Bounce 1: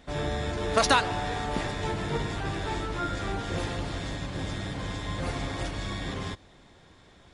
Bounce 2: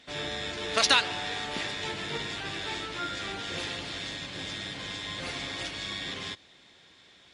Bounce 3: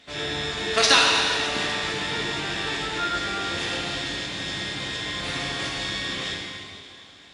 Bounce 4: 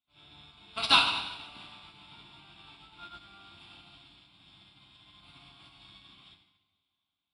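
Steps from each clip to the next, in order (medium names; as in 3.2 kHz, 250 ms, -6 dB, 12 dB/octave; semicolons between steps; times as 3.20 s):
frequency weighting D; trim -5.5 dB
plate-style reverb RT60 2.3 s, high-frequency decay 1×, DRR -3 dB; trim +2 dB
static phaser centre 1.8 kHz, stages 6; upward expansion 2.5:1, over -41 dBFS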